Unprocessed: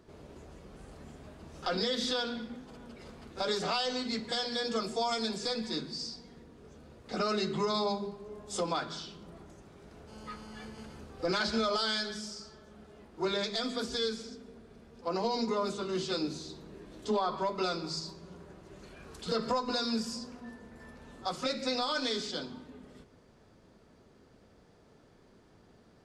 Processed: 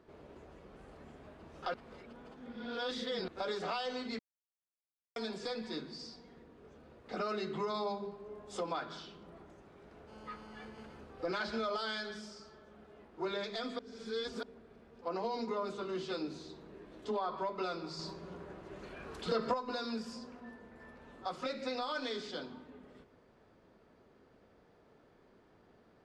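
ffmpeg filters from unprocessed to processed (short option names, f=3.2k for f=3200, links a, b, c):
-filter_complex "[0:a]asettb=1/sr,asplit=3[a][b][c];[a]atrim=end=17.994[d];[b]atrim=start=17.99:end=19.54,asetpts=PTS-STARTPTS,afade=t=in:d=0.004:c=qsin,afade=t=out:st=1.546:d=0.004:c=qsin,acontrast=55[e];[c]atrim=start=19.536[f];[d][e]acrossfade=d=0.004:c1=hsin:c2=qsin[g];[g][f]acrossfade=d=0.004:c1=qsin:c2=hsin,asplit=7[h][i][j][k][l][m][n];[h]atrim=end=1.742[o];[i]atrim=start=1.738:end=3.282,asetpts=PTS-STARTPTS,areverse[p];[j]atrim=start=3.278:end=4.19,asetpts=PTS-STARTPTS,afade=t=out:st=0.908:d=0.004:c=hsin[q];[k]atrim=start=4.19:end=5.16,asetpts=PTS-STARTPTS,volume=0[r];[l]atrim=start=5.16:end=13.792,asetpts=PTS-STARTPTS,afade=t=in:d=0.004:c=hsin[s];[m]atrim=start=13.788:end=14.432,asetpts=PTS-STARTPTS,areverse[t];[n]atrim=start=14.428[u];[o][p]acrossfade=d=0.004:c1=hsin:c2=hsin[v];[q][r][s]concat=n=3:v=0:a=1[w];[v][w]acrossfade=d=0.004:c1=hsin:c2=hsin[x];[x][t]acrossfade=d=0.004:c1=hsin:c2=hsin[y];[y][u]acrossfade=d=0.004:c1=hsin:c2=hsin,bass=f=250:g=-6,treble=f=4k:g=-12,acompressor=threshold=-36dB:ratio=1.5,volume=-1.5dB"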